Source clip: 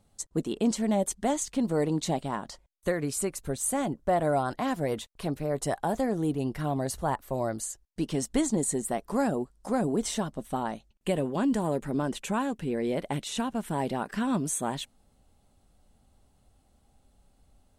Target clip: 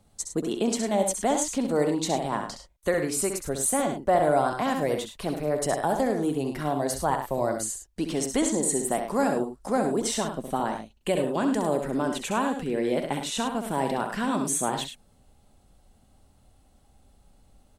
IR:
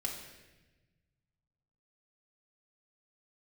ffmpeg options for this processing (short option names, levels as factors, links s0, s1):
-filter_complex "[0:a]acrossover=split=270[s0][s1];[s0]acompressor=threshold=0.01:ratio=6[s2];[s2][s1]amix=inputs=2:normalize=0,aecho=1:1:66|103:0.447|0.316,volume=1.5"